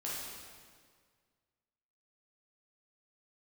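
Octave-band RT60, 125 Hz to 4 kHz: 2.1, 1.9, 1.9, 1.7, 1.6, 1.5 seconds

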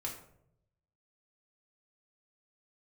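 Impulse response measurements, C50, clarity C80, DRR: 7.0 dB, 10.0 dB, −2.0 dB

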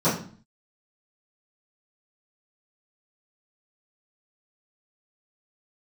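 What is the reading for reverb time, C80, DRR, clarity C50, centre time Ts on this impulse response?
0.45 s, 11.5 dB, −16.0 dB, 6.5 dB, 32 ms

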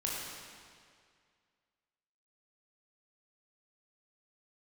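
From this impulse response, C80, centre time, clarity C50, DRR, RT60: 0.5 dB, 121 ms, −1.5 dB, −4.5 dB, 2.1 s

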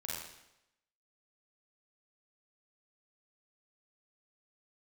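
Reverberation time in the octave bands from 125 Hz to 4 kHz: 0.80, 0.85, 0.85, 0.85, 0.85, 0.80 seconds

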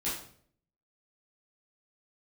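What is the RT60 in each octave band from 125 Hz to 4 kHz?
0.80, 0.70, 0.65, 0.50, 0.45, 0.45 seconds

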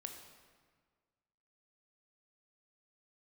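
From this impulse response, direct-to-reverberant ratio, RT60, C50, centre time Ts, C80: 4.0 dB, 1.6 s, 5.5 dB, 36 ms, 7.0 dB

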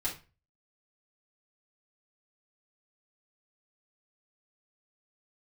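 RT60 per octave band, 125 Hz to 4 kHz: 0.50, 0.35, 0.35, 0.30, 0.30, 0.25 seconds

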